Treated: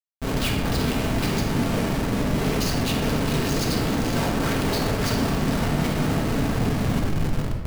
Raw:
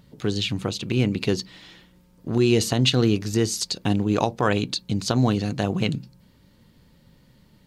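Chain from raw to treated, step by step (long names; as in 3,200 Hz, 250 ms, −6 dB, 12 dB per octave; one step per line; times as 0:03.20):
Chebyshev low-pass with heavy ripple 6,700 Hz, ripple 6 dB
low-shelf EQ 310 Hz +8.5 dB
on a send: feedback delay with all-pass diffusion 469 ms, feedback 52%, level −5 dB
on the sum: random phases in short frames
comparator with hysteresis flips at −36 dBFS
rectangular room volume 750 cubic metres, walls mixed, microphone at 1.6 metres
level −4 dB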